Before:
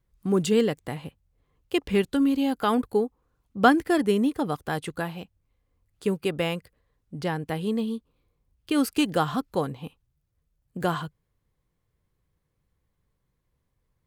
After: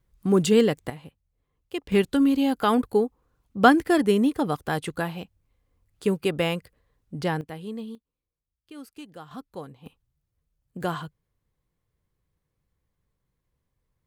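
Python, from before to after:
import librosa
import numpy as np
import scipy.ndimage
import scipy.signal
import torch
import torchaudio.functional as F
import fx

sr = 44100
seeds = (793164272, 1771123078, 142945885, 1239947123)

y = fx.gain(x, sr, db=fx.steps((0.0, 3.0), (0.9, -6.5), (1.92, 2.0), (7.41, -8.0), (7.95, -19.0), (9.31, -11.5), (9.86, -2.5)))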